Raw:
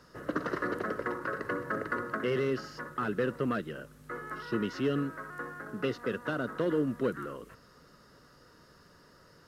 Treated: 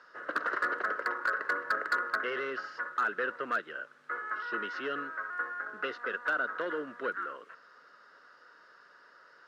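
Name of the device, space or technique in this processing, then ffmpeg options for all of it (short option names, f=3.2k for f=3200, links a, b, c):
megaphone: -af "highpass=590,lowpass=3.9k,equalizer=f=1.5k:t=o:w=0.51:g=9,asoftclip=type=hard:threshold=-22dB"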